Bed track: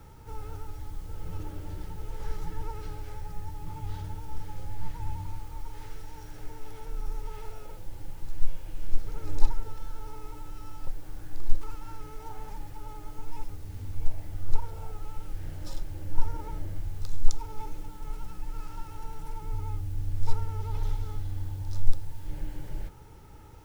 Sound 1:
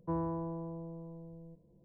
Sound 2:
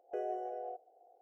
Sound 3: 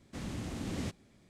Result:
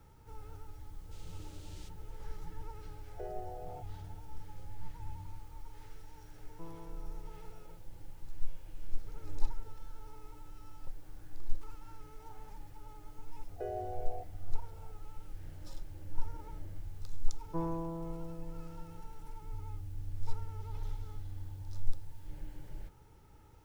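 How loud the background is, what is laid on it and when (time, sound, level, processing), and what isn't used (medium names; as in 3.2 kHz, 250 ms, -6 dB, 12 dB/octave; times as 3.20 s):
bed track -9.5 dB
0.98 s: add 3 -9 dB + inverse Chebyshev band-stop 130–590 Hz, stop band 80 dB
3.06 s: add 2 -5.5 dB
6.51 s: add 1 -15.5 dB
13.47 s: add 2 -1.5 dB
17.46 s: add 1 -1.5 dB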